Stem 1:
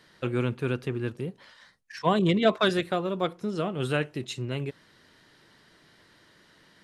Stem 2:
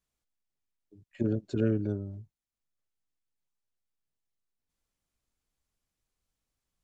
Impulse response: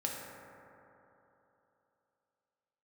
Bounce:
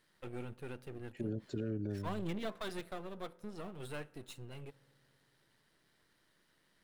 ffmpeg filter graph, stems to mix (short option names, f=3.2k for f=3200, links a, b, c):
-filter_complex "[0:a]aeval=exprs='if(lt(val(0),0),0.251*val(0),val(0))':c=same,aexciter=amount=2.8:drive=3.2:freq=8.9k,volume=-12.5dB,asplit=2[a][b];[b]volume=-23dB[c];[1:a]volume=-4.5dB[d];[2:a]atrim=start_sample=2205[e];[c][e]afir=irnorm=-1:irlink=0[f];[a][d][f]amix=inputs=3:normalize=0,alimiter=level_in=4.5dB:limit=-24dB:level=0:latency=1:release=88,volume=-4.5dB"